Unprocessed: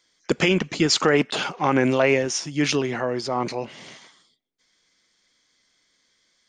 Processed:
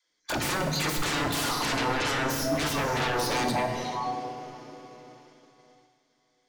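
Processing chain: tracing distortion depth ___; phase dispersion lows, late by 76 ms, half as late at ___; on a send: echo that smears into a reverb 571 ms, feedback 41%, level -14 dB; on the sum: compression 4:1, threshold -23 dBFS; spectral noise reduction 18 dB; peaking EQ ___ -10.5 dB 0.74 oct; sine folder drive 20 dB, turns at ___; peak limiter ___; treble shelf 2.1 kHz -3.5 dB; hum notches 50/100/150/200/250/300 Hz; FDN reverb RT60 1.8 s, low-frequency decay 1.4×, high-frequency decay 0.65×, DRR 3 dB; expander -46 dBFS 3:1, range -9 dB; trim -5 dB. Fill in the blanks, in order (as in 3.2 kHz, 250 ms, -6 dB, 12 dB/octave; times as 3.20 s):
0.033 ms, 360 Hz, 89 Hz, -13 dBFS, -20 dBFS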